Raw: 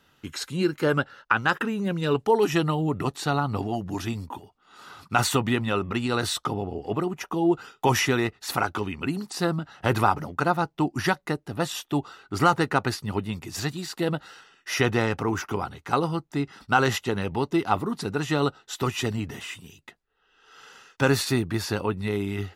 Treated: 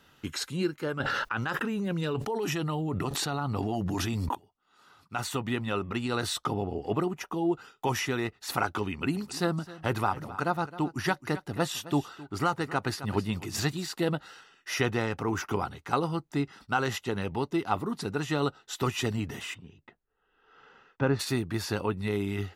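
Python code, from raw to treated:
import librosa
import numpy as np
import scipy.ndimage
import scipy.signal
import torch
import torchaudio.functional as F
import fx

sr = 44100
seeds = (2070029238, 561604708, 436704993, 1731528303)

y = fx.env_flatten(x, sr, amount_pct=100, at=(1.0, 4.35))
y = fx.echo_single(y, sr, ms=264, db=-16.5, at=(9.13, 13.83), fade=0.02)
y = fx.spacing_loss(y, sr, db_at_10k=37, at=(19.53, 21.19), fade=0.02)
y = fx.rider(y, sr, range_db=10, speed_s=0.5)
y = y * 10.0 ** (-8.0 / 20.0)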